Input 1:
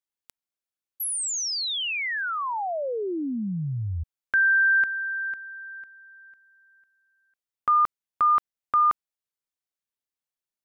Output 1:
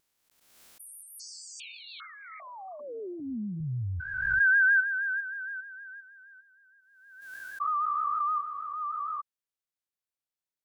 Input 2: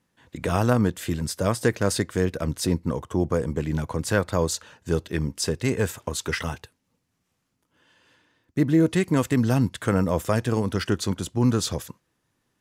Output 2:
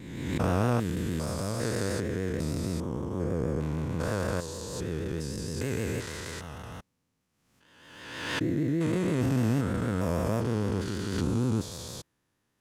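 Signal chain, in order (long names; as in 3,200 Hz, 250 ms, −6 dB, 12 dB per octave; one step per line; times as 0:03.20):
spectrum averaged block by block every 400 ms
pitch vibrato 6.4 Hz 65 cents
background raised ahead of every attack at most 46 dB per second
level −2 dB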